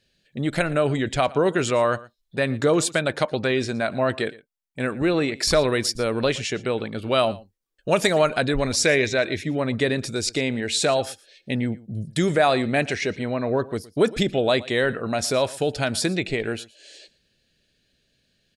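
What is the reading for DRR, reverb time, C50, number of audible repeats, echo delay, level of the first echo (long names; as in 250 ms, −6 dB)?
no reverb audible, no reverb audible, no reverb audible, 1, 116 ms, −20.5 dB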